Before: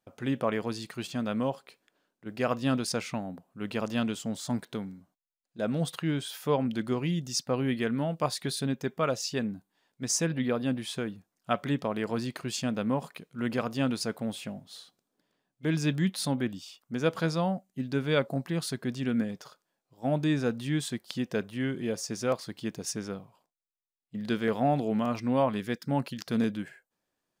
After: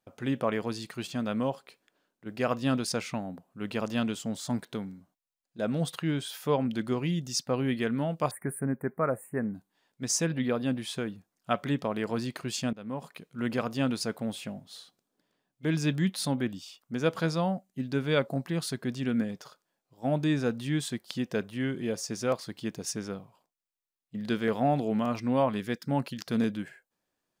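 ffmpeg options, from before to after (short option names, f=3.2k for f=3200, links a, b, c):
-filter_complex "[0:a]asettb=1/sr,asplit=3[a][b][c];[a]atrim=end=8.314[d];[b]atrim=start=8.31:end=9.55,asetpts=PTS-STARTPTS,afade=t=in:d=0.004:c=qsin,afade=t=out:st=1.236:d=0.004:c=qsin,asuperstop=centerf=4400:order=12:qfactor=0.66[e];[c]atrim=start=9.546[f];[d][e]acrossfade=d=0.004:c1=hsin:c2=qsin[g];[g][f]acrossfade=d=0.004:c1=qsin:c2=hsin,asplit=2[h][i];[h]atrim=end=12.73,asetpts=PTS-STARTPTS,afade=t=out:st=12.726:d=0.004:c=hsin:silence=0.112202[j];[i]atrim=start=12.73,asetpts=PTS-STARTPTS,afade=t=in:d=0.55:silence=0.112202[k];[j][k]concat=n=2:v=0:a=1"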